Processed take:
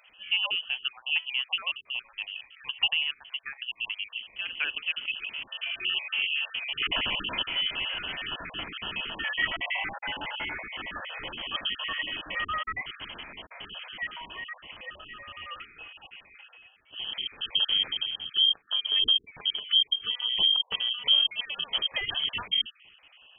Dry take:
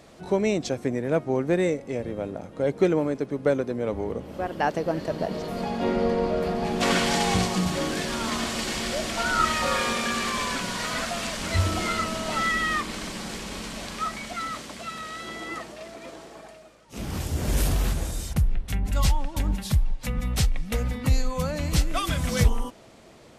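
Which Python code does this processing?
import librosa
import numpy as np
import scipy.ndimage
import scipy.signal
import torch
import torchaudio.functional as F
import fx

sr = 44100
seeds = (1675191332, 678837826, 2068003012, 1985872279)

y = fx.spec_dropout(x, sr, seeds[0], share_pct=39)
y = fx.freq_invert(y, sr, carrier_hz=3200)
y = y * 10.0 ** (-4.0 / 20.0)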